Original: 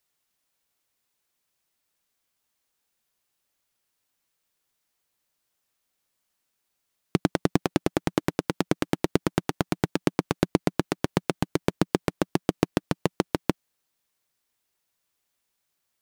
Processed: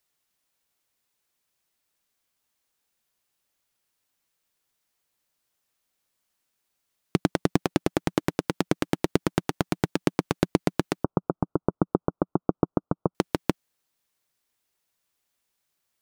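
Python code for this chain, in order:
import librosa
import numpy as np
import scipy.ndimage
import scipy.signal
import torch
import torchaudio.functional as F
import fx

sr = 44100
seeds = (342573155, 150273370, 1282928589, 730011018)

y = fx.steep_lowpass(x, sr, hz=1400.0, slope=96, at=(11.04, 13.15))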